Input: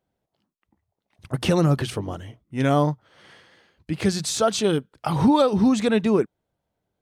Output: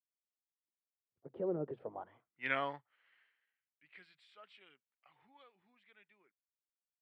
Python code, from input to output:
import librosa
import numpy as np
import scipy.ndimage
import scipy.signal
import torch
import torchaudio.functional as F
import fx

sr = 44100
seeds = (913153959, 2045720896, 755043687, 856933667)

y = fx.doppler_pass(x, sr, speed_mps=21, closest_m=4.9, pass_at_s=2.45)
y = fx.filter_sweep_bandpass(y, sr, from_hz=440.0, to_hz=2100.0, start_s=1.71, end_s=2.41, q=3.0)
y = np.convolve(y, np.full(7, 1.0 / 7))[:len(y)]
y = fx.band_widen(y, sr, depth_pct=40)